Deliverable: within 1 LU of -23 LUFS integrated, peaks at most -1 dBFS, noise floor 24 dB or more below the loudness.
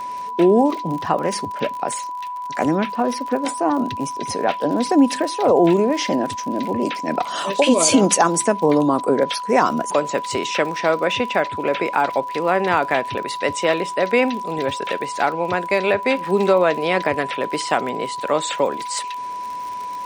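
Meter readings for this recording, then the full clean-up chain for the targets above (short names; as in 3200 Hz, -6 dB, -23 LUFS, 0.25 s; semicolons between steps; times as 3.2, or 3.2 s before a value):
ticks 49/s; steady tone 990 Hz; tone level -26 dBFS; loudness -20.0 LUFS; peak -2.5 dBFS; loudness target -23.0 LUFS
-> de-click; notch 990 Hz, Q 30; gain -3 dB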